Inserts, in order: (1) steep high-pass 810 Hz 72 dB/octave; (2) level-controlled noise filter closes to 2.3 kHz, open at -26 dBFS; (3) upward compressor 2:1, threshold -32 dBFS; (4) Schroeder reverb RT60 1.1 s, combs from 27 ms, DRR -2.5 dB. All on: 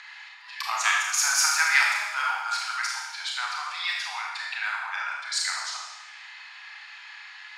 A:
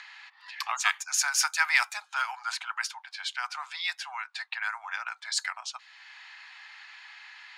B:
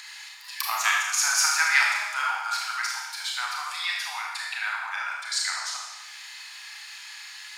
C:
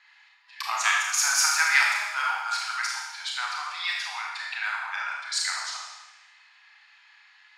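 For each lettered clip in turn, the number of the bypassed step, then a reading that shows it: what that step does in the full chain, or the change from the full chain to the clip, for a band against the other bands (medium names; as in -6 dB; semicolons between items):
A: 4, crest factor change +3.5 dB; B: 2, momentary loudness spread change -3 LU; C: 3, momentary loudness spread change -9 LU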